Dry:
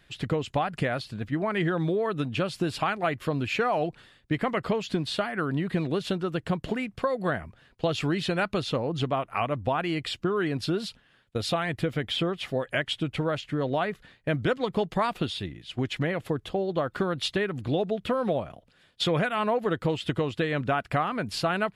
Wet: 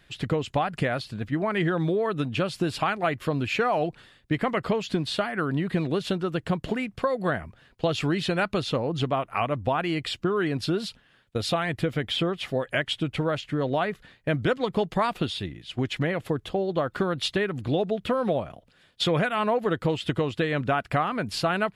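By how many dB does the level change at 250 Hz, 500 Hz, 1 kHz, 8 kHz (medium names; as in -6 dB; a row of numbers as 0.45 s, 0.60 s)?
+1.5 dB, +1.5 dB, +1.5 dB, +1.5 dB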